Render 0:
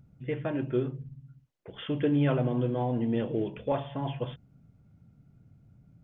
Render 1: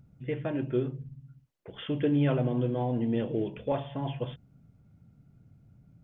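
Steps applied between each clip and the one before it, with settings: dynamic bell 1.2 kHz, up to -3 dB, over -47 dBFS, Q 1.2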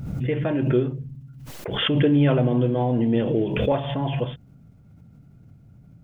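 swell ahead of each attack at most 40 dB/s; trim +7 dB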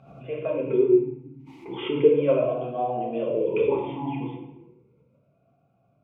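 reverberation RT60 0.95 s, pre-delay 4 ms, DRR -2 dB; talking filter a-u 0.35 Hz; trim +4.5 dB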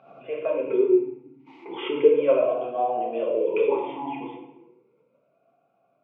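band-pass 400–3200 Hz; trim +3 dB

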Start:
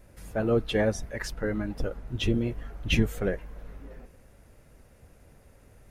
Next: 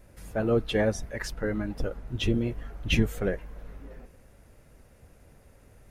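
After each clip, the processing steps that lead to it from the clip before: no audible change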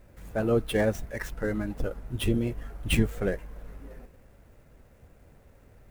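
median filter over 9 samples; treble shelf 7.6 kHz +11.5 dB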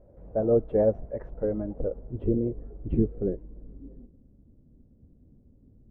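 low-pass sweep 580 Hz -> 260 Hz, 1.58–4.25 s; trim -2.5 dB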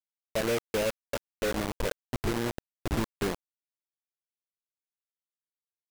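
compression 8:1, threshold -27 dBFS, peak gain reduction 10.5 dB; bit crusher 5-bit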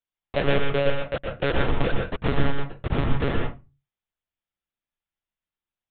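monotone LPC vocoder at 8 kHz 140 Hz; reverberation RT60 0.25 s, pre-delay 114 ms, DRR 2 dB; trim +5.5 dB

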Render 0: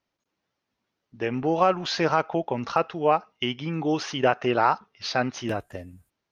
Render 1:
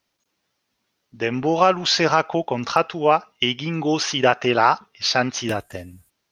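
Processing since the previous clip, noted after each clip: treble shelf 2.7 kHz +9.5 dB; trim +3.5 dB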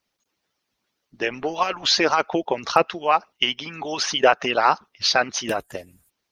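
harmonic-percussive split harmonic -18 dB; trim +2 dB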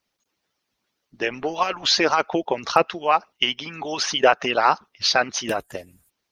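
no audible change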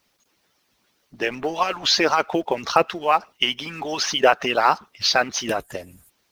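companding laws mixed up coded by mu

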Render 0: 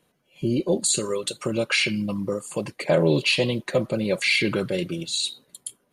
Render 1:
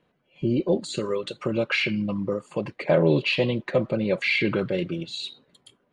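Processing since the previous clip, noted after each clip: low-pass 2.9 kHz 12 dB/octave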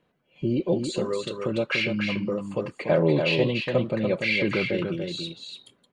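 delay 290 ms -5.5 dB; trim -1.5 dB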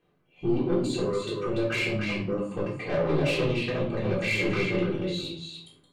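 saturation -22.5 dBFS, distortion -10 dB; simulated room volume 500 m³, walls furnished, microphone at 3.7 m; trim -5.5 dB

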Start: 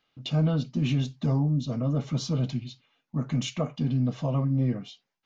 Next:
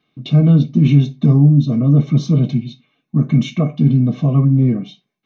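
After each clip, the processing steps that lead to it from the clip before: reverberation RT60 0.25 s, pre-delay 3 ms, DRR 6.5 dB; trim -1 dB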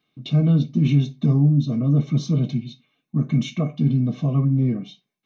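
treble shelf 3.9 kHz +6.5 dB; trim -6.5 dB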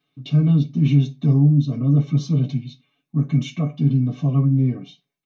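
comb 7.1 ms, depth 79%; trim -3 dB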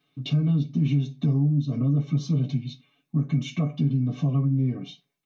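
compression 3:1, threshold -25 dBFS, peak gain reduction 11 dB; trim +2.5 dB

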